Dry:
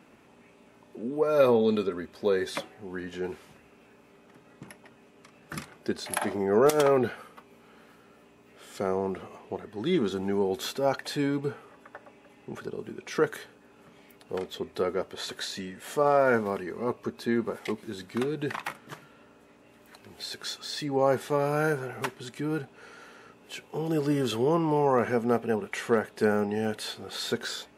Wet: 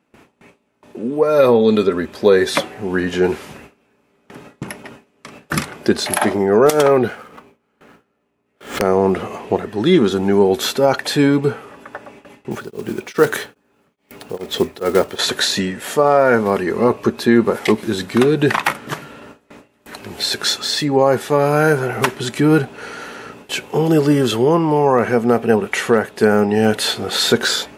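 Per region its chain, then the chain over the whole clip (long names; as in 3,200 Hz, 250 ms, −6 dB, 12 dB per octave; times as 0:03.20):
0:07.08–0:08.82: running median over 9 samples + wrap-around overflow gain 19 dB + background raised ahead of every attack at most 110 dB per second
0:12.51–0:15.19: one scale factor per block 5 bits + tremolo along a rectified sine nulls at 2.4 Hz
whole clip: noise gate with hold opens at −45 dBFS; speech leveller within 4 dB 0.5 s; boost into a limiter +14.5 dB; level −1 dB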